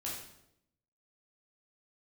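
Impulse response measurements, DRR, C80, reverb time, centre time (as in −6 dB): −5.5 dB, 6.0 dB, 0.80 s, 49 ms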